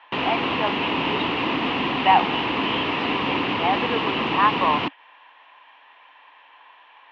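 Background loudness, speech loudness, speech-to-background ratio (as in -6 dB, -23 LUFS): -23.5 LUFS, -26.0 LUFS, -2.5 dB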